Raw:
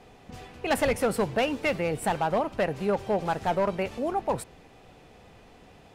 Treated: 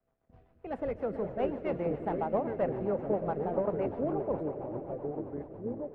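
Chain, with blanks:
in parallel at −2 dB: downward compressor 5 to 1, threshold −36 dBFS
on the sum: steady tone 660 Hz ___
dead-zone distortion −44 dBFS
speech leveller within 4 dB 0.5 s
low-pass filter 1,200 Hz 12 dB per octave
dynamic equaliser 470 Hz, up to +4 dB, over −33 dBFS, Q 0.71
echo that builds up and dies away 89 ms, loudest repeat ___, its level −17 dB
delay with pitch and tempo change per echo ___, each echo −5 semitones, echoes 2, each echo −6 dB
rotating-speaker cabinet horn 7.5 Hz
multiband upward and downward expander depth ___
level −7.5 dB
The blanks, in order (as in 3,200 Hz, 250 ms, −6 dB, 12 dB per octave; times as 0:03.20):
−44 dBFS, 5, 271 ms, 40%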